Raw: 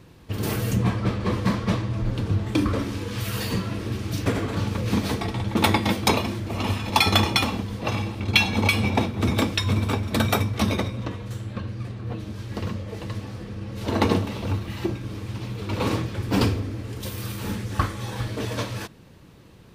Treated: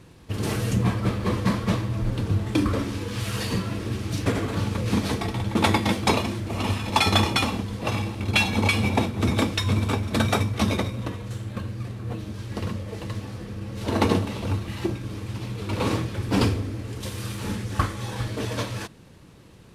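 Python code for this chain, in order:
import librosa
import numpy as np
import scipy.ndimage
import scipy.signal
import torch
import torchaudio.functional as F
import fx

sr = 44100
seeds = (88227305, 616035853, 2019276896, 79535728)

y = fx.cvsd(x, sr, bps=64000)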